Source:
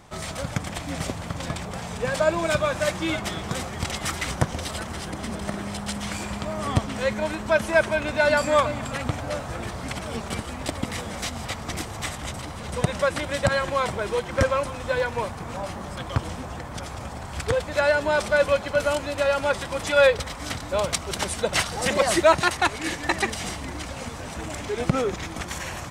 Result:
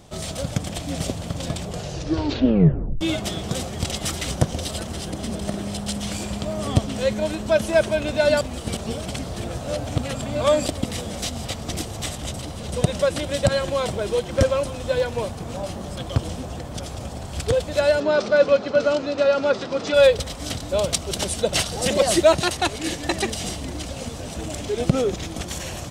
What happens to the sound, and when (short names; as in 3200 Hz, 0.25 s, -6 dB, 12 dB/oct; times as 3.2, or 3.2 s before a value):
1.65 tape stop 1.36 s
8.41–10.66 reverse
18–19.94 speaker cabinet 160–5600 Hz, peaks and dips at 250 Hz +6 dB, 430 Hz +6 dB, 1300 Hz +7 dB, 3200 Hz -5 dB
whole clip: band shelf 1400 Hz -8.5 dB; gain +3.5 dB